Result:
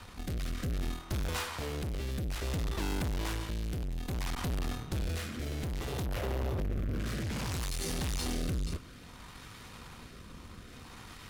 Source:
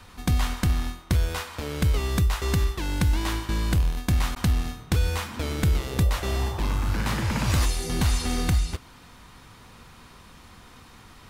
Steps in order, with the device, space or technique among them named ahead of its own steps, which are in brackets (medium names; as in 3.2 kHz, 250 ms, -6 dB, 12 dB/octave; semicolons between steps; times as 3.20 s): 6.06–6.99 s: ten-band graphic EQ 125 Hz +6 dB, 500 Hz +9 dB, 1 kHz -10 dB, 4 kHz -7 dB, 8 kHz -10 dB; overdriven rotary cabinet (valve stage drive 36 dB, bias 0.65; rotary cabinet horn 0.6 Hz); trim +5.5 dB